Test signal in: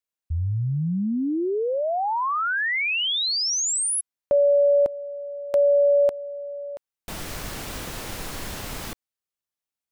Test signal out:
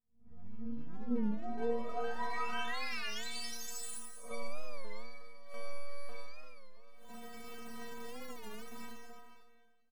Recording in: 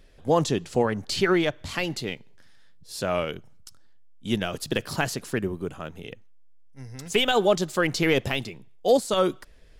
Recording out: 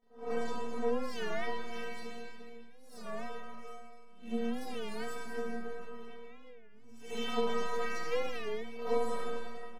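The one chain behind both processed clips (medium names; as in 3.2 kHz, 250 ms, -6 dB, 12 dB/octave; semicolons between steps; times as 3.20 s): reverse spectral sustain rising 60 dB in 0.42 s; treble shelf 2.2 kHz -10.5 dB; speakerphone echo 350 ms, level -8 dB; plate-style reverb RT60 1.6 s, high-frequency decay 0.9×, DRR -1 dB; half-wave rectifier; bass shelf 77 Hz -10 dB; inharmonic resonator 230 Hz, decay 0.75 s, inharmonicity 0.008; warped record 33 1/3 rpm, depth 160 cents; trim +5.5 dB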